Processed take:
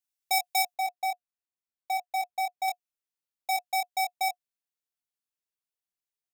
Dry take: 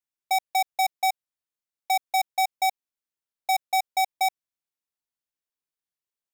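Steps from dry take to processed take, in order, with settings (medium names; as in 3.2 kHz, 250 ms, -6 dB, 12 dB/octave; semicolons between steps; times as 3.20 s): treble shelf 2.4 kHz +11 dB, from 0.74 s -3 dB, from 2.68 s +4 dB; doubling 22 ms -4 dB; small resonant body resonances 720/2600 Hz, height 6 dB, ringing for 70 ms; trim -7.5 dB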